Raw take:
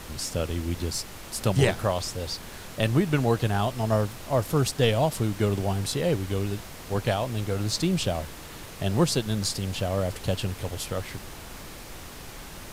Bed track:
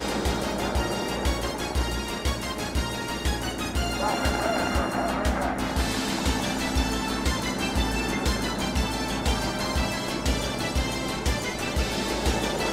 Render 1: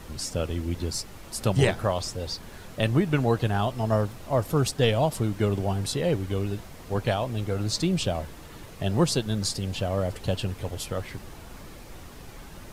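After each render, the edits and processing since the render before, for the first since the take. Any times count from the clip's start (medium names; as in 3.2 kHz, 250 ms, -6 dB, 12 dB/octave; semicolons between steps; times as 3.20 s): noise reduction 7 dB, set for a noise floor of -42 dBFS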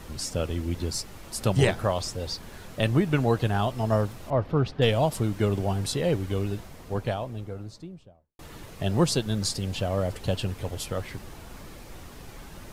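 4.30–4.82 s: distance through air 300 m; 6.37–8.39 s: studio fade out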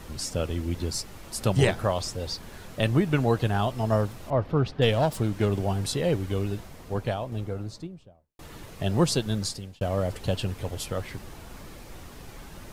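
4.93–5.52 s: self-modulated delay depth 0.11 ms; 7.32–7.87 s: gain +4 dB; 9.34–9.81 s: fade out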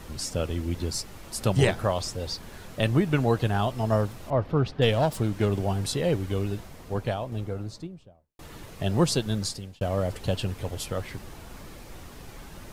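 no audible change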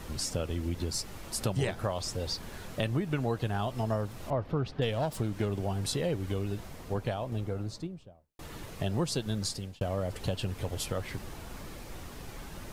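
compression 3:1, threshold -29 dBFS, peak gain reduction 10 dB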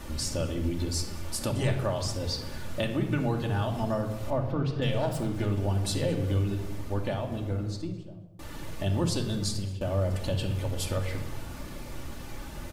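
delay 213 ms -22 dB; simulated room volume 3100 m³, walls furnished, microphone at 2.5 m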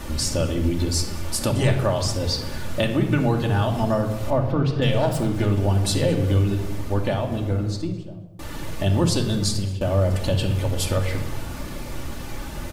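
trim +7.5 dB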